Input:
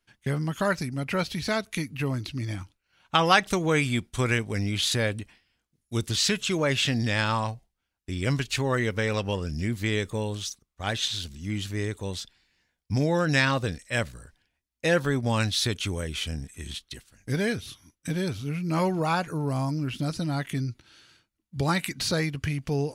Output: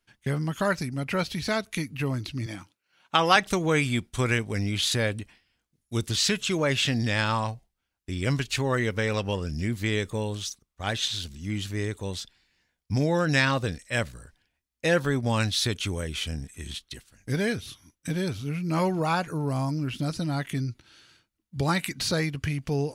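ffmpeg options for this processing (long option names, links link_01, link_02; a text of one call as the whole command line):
ffmpeg -i in.wav -filter_complex "[0:a]asettb=1/sr,asplit=3[link_01][link_02][link_03];[link_01]atrim=end=2.464[link_04];[link_02]atrim=start=2.46:end=3.36,asetpts=PTS-STARTPTS,afade=type=in:duration=0.004:curve=qsin,afade=type=out:start_time=0.896:duration=0.004:curve=qsin,highpass=180[link_05];[link_03]atrim=start=3.356[link_06];[link_04][link_05]acrossfade=duration=0.004:curve1=hsin:curve2=qsin[link_07];[link_07][link_06]acrossfade=duration=0.004:curve1=qsin:curve2=hsin" out.wav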